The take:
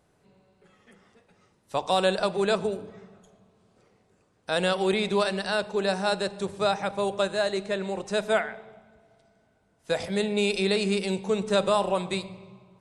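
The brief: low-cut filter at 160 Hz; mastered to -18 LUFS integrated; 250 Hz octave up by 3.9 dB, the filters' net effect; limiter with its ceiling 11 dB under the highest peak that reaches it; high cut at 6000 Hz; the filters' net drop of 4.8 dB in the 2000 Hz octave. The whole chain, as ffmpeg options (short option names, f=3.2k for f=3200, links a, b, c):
-af "highpass=160,lowpass=6k,equalizer=f=250:t=o:g=8,equalizer=f=2k:t=o:g=-7,volume=13dB,alimiter=limit=-8.5dB:level=0:latency=1"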